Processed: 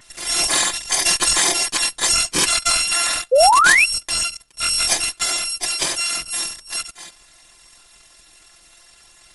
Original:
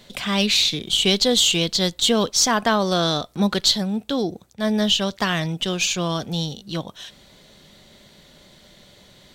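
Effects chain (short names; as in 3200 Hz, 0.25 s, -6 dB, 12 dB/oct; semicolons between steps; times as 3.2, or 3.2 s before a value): FFT order left unsorted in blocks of 256 samples; painted sound rise, 3.32–3.85, 980–5600 Hz -13 dBFS; pitch shift -12 st; gain +1.5 dB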